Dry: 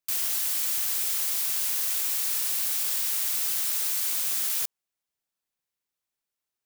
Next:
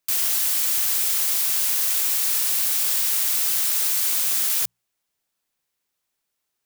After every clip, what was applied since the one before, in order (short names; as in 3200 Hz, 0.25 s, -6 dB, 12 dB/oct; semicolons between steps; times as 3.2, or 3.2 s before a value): notches 60/120/180 Hz; in parallel at 0 dB: limiter -25 dBFS, peak gain reduction 10 dB; on the sum: gain +2.5 dB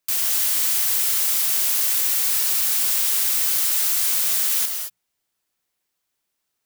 non-linear reverb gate 0.25 s rising, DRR 4.5 dB